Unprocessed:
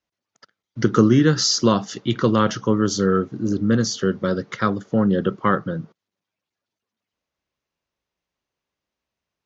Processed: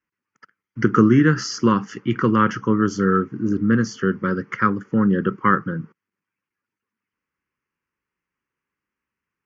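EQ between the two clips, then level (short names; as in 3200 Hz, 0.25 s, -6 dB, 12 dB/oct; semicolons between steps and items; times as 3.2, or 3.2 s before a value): LPF 3900 Hz 12 dB/oct; low shelf 110 Hz -11.5 dB; fixed phaser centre 1600 Hz, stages 4; +5.0 dB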